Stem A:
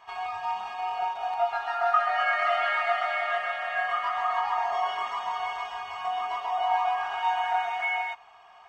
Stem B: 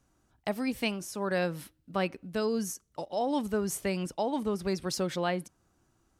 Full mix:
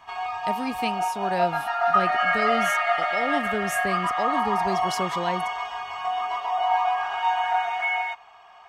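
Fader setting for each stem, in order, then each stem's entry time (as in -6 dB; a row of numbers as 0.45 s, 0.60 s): +3.0 dB, +1.0 dB; 0.00 s, 0.00 s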